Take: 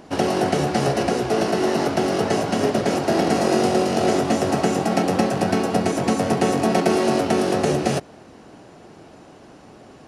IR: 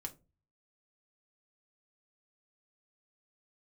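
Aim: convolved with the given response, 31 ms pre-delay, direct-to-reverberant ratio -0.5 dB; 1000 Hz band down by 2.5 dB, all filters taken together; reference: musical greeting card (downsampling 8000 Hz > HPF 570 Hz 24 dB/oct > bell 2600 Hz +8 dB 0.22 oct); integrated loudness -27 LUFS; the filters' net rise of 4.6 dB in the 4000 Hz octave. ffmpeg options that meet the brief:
-filter_complex "[0:a]equalizer=f=1k:t=o:g=-3.5,equalizer=f=4k:t=o:g=5,asplit=2[a][b];[1:a]atrim=start_sample=2205,adelay=31[c];[b][c]afir=irnorm=-1:irlink=0,volume=3.5dB[d];[a][d]amix=inputs=2:normalize=0,aresample=8000,aresample=44100,highpass=f=570:w=0.5412,highpass=f=570:w=1.3066,equalizer=f=2.6k:t=o:w=0.22:g=8,volume=-4.5dB"

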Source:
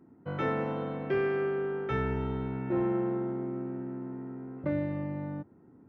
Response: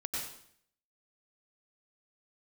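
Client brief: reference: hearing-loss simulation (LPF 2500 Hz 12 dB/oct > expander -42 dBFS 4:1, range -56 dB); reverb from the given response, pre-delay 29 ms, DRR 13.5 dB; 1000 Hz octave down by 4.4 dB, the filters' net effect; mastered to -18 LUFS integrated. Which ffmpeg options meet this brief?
-filter_complex "[0:a]equalizer=f=1k:t=o:g=-6,asplit=2[a][b];[1:a]atrim=start_sample=2205,adelay=29[c];[b][c]afir=irnorm=-1:irlink=0,volume=-16dB[d];[a][d]amix=inputs=2:normalize=0,lowpass=2.5k,agate=range=-56dB:threshold=-42dB:ratio=4,volume=15.5dB"

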